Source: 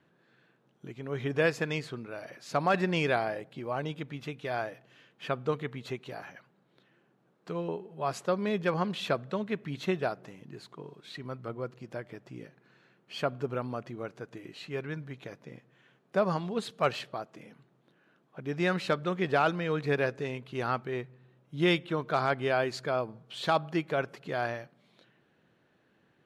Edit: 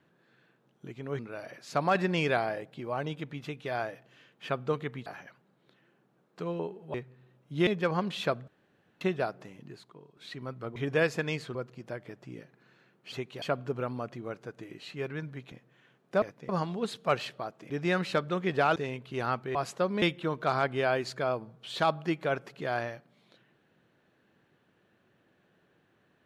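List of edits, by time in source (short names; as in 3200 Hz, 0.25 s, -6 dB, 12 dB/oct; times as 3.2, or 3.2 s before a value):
1.19–1.98 move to 11.59
5.85–6.15 move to 13.16
8.03–8.5 swap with 20.96–21.69
9.31–9.84 room tone
10.48–11 fade out quadratic, to -10 dB
15.26–15.53 move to 16.23
17.44–18.45 cut
19.51–20.17 cut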